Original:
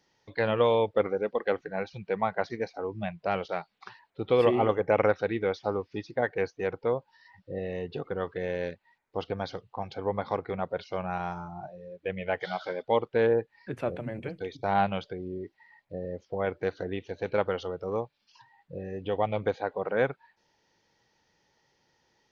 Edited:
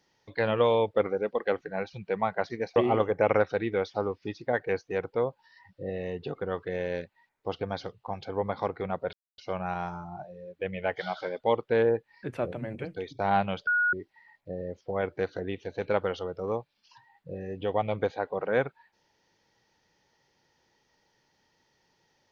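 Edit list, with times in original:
2.76–4.45 cut
10.82 insert silence 0.25 s
15.11–15.37 bleep 1450 Hz -21.5 dBFS

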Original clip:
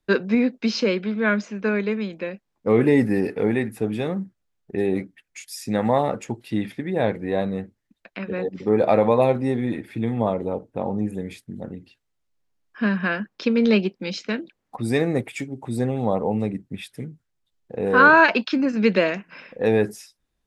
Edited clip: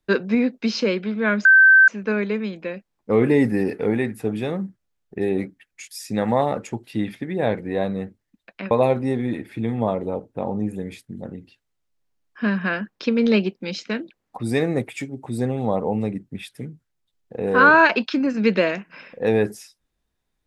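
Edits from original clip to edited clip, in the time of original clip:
1.45 add tone 1550 Hz -8 dBFS 0.43 s
8.28–9.1 cut

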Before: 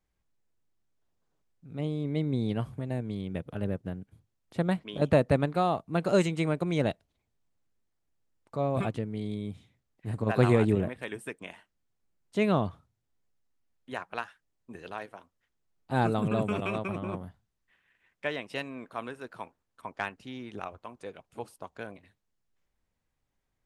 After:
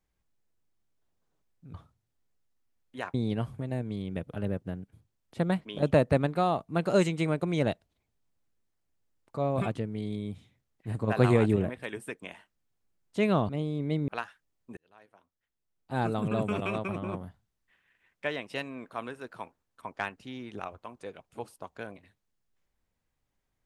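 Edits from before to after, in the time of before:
1.74–2.33 swap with 12.68–14.08
14.77–16.58 fade in

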